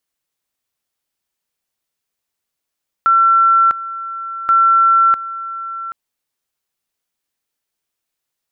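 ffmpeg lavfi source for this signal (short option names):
-f lavfi -i "aevalsrc='pow(10,(-8-15*gte(mod(t,1.43),0.65))/20)*sin(2*PI*1350*t)':d=2.86:s=44100"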